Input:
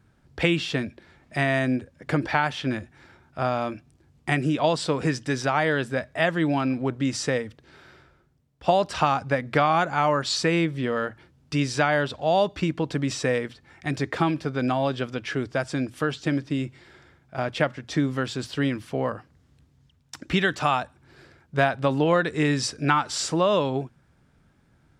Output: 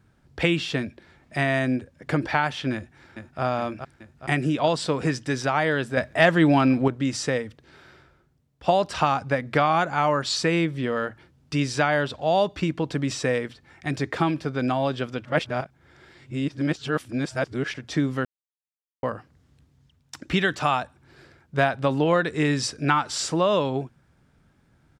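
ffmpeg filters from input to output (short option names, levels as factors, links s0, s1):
-filter_complex "[0:a]asplit=2[s0][s1];[s1]afade=t=in:st=2.74:d=0.01,afade=t=out:st=3.42:d=0.01,aecho=0:1:420|840|1260|1680|2100|2520|2940|3360|3780:0.473151|0.307548|0.199906|0.129939|0.0844605|0.0548993|0.0356845|0.023195|0.0150767[s2];[s0][s2]amix=inputs=2:normalize=0,asettb=1/sr,asplit=3[s3][s4][s5];[s3]atrim=end=5.974[s6];[s4]atrim=start=5.97:end=6.88,asetpts=PTS-STARTPTS,afade=t=in:d=0.004:c=qsin,afade=t=out:st=0.906:d=0.004:c=qsin,acontrast=43[s7];[s5]atrim=start=6.876[s8];[s6][s7]acrossfade=d=0.004:c1=hsin:c2=qsin[s9];[s9][s8]acrossfade=d=0.004:c1=qsin:c2=hsin,asplit=5[s10][s11][s12][s13][s14];[s10]atrim=end=15.252[s15];[s11]atrim=start=15.248:end=17.742,asetpts=PTS-STARTPTS,areverse[s16];[s12]atrim=start=17.738:end=18.25,asetpts=PTS-STARTPTS,afade=t=out:st=0.508:d=0.004:c=hsin[s17];[s13]atrim=start=18.25:end=19.03,asetpts=PTS-STARTPTS,volume=0[s18];[s14]atrim=start=19.03,asetpts=PTS-STARTPTS,afade=t=in:d=0.004:c=hsin[s19];[s15][s16]acrossfade=d=0.004:c1=hsin:c2=hsin[s20];[s17][s18][s19]concat=n=3:v=0:a=1[s21];[s20][s21]acrossfade=d=0.004:c1=hsin:c2=hsin"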